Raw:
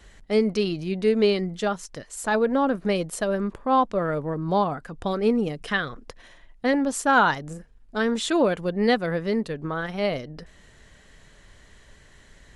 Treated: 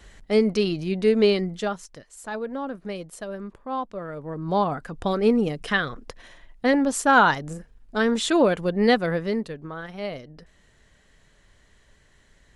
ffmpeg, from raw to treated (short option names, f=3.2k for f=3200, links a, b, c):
-af "volume=12.5dB,afade=t=out:st=1.35:d=0.72:silence=0.298538,afade=t=in:st=4.15:d=0.63:silence=0.281838,afade=t=out:st=9.05:d=0.59:silence=0.375837"